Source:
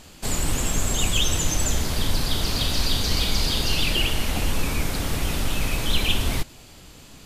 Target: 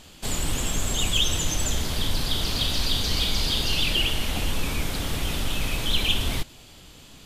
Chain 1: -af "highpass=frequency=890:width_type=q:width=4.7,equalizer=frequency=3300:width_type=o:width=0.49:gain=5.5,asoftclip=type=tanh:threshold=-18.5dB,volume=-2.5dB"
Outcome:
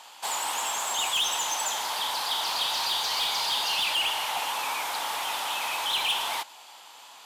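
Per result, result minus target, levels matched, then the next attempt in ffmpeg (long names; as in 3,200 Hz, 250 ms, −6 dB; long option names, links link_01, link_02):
1,000 Hz band +10.0 dB; soft clipping: distortion +14 dB
-af "equalizer=frequency=3300:width_type=o:width=0.49:gain=5.5,asoftclip=type=tanh:threshold=-18.5dB,volume=-2.5dB"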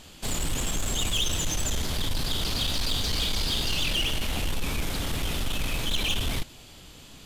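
soft clipping: distortion +16 dB
-af "equalizer=frequency=3300:width_type=o:width=0.49:gain=5.5,asoftclip=type=tanh:threshold=-7dB,volume=-2.5dB"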